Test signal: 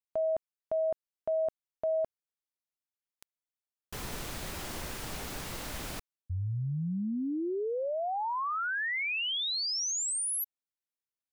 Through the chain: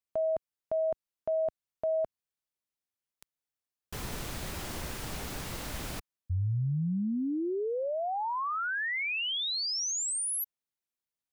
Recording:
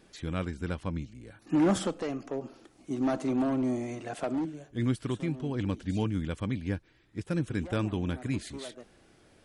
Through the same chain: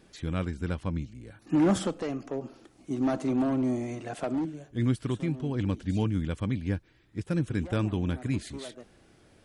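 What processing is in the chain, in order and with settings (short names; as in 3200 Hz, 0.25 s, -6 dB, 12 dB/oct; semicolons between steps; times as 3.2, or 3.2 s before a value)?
bell 86 Hz +3.5 dB 2.9 oct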